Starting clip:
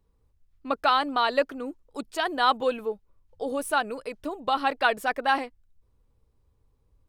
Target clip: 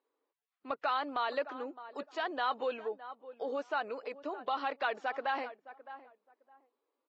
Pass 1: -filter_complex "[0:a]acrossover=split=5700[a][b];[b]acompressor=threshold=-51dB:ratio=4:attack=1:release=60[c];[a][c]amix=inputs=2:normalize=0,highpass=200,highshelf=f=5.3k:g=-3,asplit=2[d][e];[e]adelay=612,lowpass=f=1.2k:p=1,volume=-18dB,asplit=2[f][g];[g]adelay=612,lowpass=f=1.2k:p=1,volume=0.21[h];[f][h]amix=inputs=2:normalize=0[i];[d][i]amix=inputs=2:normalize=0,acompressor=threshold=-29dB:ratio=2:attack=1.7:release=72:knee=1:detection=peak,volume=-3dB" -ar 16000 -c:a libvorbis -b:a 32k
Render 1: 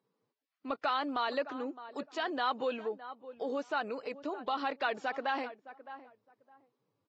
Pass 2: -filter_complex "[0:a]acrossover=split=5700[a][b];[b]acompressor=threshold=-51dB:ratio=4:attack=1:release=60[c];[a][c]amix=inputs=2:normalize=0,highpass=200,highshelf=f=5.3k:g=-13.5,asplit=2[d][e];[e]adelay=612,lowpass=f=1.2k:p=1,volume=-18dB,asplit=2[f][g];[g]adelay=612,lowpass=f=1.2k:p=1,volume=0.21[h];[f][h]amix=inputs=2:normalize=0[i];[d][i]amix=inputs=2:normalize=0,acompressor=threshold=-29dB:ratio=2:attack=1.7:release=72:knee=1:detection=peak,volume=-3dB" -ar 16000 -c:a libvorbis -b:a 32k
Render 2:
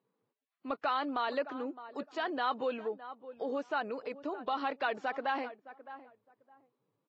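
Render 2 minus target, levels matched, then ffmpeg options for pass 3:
250 Hz band +5.0 dB
-filter_complex "[0:a]acrossover=split=5700[a][b];[b]acompressor=threshold=-51dB:ratio=4:attack=1:release=60[c];[a][c]amix=inputs=2:normalize=0,highpass=400,highshelf=f=5.3k:g=-13.5,asplit=2[d][e];[e]adelay=612,lowpass=f=1.2k:p=1,volume=-18dB,asplit=2[f][g];[g]adelay=612,lowpass=f=1.2k:p=1,volume=0.21[h];[f][h]amix=inputs=2:normalize=0[i];[d][i]amix=inputs=2:normalize=0,acompressor=threshold=-29dB:ratio=2:attack=1.7:release=72:knee=1:detection=peak,volume=-3dB" -ar 16000 -c:a libvorbis -b:a 32k

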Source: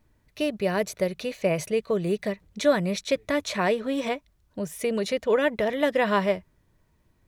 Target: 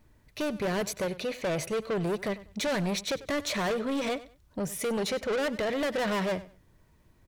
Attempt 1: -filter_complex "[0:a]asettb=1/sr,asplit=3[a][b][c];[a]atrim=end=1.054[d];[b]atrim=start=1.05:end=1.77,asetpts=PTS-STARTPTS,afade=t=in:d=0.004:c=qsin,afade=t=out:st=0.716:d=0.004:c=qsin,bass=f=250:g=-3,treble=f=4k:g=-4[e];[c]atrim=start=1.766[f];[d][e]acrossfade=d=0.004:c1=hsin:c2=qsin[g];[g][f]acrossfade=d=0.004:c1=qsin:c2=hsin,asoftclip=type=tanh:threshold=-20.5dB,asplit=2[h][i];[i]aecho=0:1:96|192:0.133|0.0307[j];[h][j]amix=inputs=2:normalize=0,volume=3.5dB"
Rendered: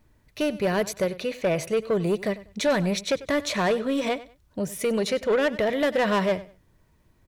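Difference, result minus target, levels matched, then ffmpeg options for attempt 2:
soft clip: distortion -7 dB
-filter_complex "[0:a]asettb=1/sr,asplit=3[a][b][c];[a]atrim=end=1.054[d];[b]atrim=start=1.05:end=1.77,asetpts=PTS-STARTPTS,afade=t=in:d=0.004:c=qsin,afade=t=out:st=0.716:d=0.004:c=qsin,bass=f=250:g=-3,treble=f=4k:g=-4[e];[c]atrim=start=1.766[f];[d][e]acrossfade=d=0.004:c1=hsin:c2=qsin[g];[g][f]acrossfade=d=0.004:c1=qsin:c2=hsin,asoftclip=type=tanh:threshold=-30dB,asplit=2[h][i];[i]aecho=0:1:96|192:0.133|0.0307[j];[h][j]amix=inputs=2:normalize=0,volume=3.5dB"

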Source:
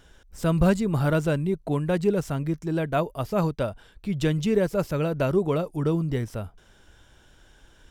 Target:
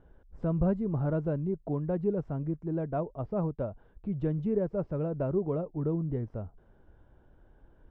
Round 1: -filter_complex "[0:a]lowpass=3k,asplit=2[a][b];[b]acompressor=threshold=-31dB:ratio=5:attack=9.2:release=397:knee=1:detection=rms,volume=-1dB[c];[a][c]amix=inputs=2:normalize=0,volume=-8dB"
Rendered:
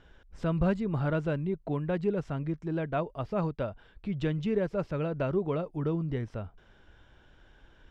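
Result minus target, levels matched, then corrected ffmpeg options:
4000 Hz band +20.0 dB
-filter_complex "[0:a]lowpass=810,asplit=2[a][b];[b]acompressor=threshold=-31dB:ratio=5:attack=9.2:release=397:knee=1:detection=rms,volume=-1dB[c];[a][c]amix=inputs=2:normalize=0,volume=-8dB"

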